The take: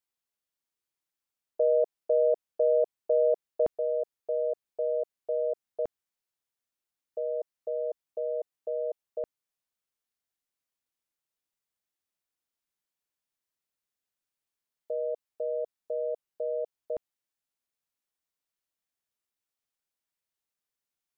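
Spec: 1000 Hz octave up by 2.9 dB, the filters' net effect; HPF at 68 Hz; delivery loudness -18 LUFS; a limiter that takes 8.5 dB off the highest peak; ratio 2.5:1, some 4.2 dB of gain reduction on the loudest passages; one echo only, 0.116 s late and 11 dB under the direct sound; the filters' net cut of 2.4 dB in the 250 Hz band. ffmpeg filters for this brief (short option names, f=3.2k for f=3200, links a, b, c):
-af "highpass=68,equalizer=f=250:t=o:g=-5,equalizer=f=1k:t=o:g=7,acompressor=threshold=-25dB:ratio=2.5,alimiter=level_in=1dB:limit=-24dB:level=0:latency=1,volume=-1dB,aecho=1:1:116:0.282,volume=16.5dB"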